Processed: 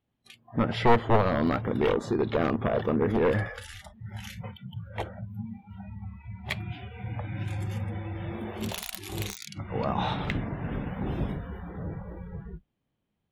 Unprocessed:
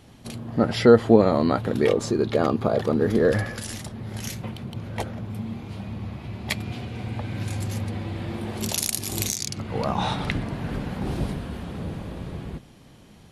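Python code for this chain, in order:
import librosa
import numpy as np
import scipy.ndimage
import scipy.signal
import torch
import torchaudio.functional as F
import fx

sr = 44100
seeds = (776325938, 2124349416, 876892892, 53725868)

y = np.minimum(x, 2.0 * 10.0 ** (-15.5 / 20.0) - x)
y = fx.noise_reduce_blind(y, sr, reduce_db=27)
y = fx.band_shelf(y, sr, hz=7500.0, db=-11.0, octaves=1.7)
y = F.gain(torch.from_numpy(y), -3.0).numpy()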